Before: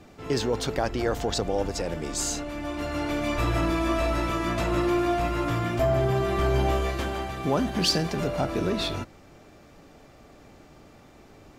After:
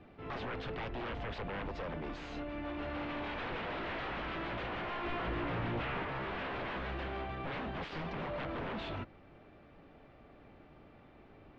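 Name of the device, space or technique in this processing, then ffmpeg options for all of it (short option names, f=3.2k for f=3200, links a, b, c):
synthesiser wavefolder: -filter_complex "[0:a]aeval=exprs='0.0422*(abs(mod(val(0)/0.0422+3,4)-2)-1)':c=same,lowpass=f=3.2k:w=0.5412,lowpass=f=3.2k:w=1.3066,asettb=1/sr,asplit=3[a][b][c];[a]atrim=end=5.044[d];[b]atrim=start=5.04:end=6.03,asetpts=PTS-STARTPTS,afade=t=in:d=0.004:c=qsin,afade=t=out:st=0.986:d=0.004:c=qsin,lowshelf=f=500:g=5.5[e];[c]atrim=start=6.026[f];[d][e]acrossfade=d=0.004:c1=hsin:c2=qsin[g];[g][f]acrossfade=d=0.004:c1=qsin:c2=hsin,volume=-6.5dB"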